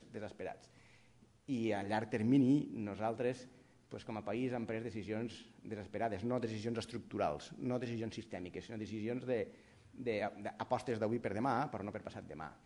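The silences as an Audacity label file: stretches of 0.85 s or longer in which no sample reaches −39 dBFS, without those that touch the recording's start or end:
0.520000	1.490000	silence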